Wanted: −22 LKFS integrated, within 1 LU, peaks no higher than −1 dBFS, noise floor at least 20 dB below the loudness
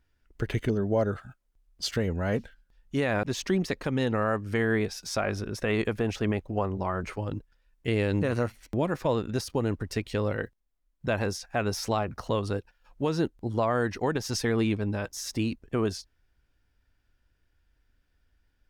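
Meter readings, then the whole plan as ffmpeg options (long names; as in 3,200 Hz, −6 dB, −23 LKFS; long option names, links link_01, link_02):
integrated loudness −29.5 LKFS; sample peak −16.0 dBFS; target loudness −22.0 LKFS
→ -af "volume=7.5dB"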